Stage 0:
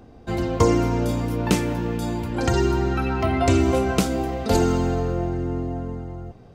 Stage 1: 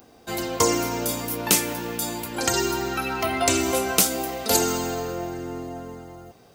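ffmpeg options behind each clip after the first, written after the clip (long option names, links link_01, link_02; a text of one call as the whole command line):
ffmpeg -i in.wav -af "aemphasis=mode=production:type=riaa" out.wav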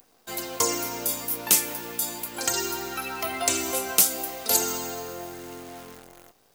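ffmpeg -i in.wav -af "crystalizer=i=1:c=0,acrusher=bits=7:dc=4:mix=0:aa=0.000001,lowshelf=frequency=280:gain=-8,volume=-5dB" out.wav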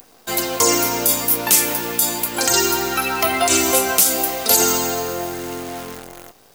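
ffmpeg -i in.wav -af "alimiter=level_in=12.5dB:limit=-1dB:release=50:level=0:latency=1,volume=-1dB" out.wav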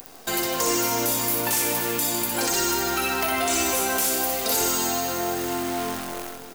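ffmpeg -i in.wav -filter_complex "[0:a]asoftclip=type=hard:threshold=-15dB,acompressor=threshold=-29dB:ratio=3,asplit=2[link_01][link_02];[link_02]aecho=0:1:60|156|309.6|555.4|948.6:0.631|0.398|0.251|0.158|0.1[link_03];[link_01][link_03]amix=inputs=2:normalize=0,volume=2.5dB" out.wav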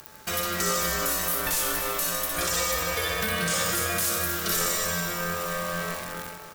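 ffmpeg -i in.wav -af "aeval=exprs='val(0)*sin(2*PI*870*n/s)':channel_layout=same" out.wav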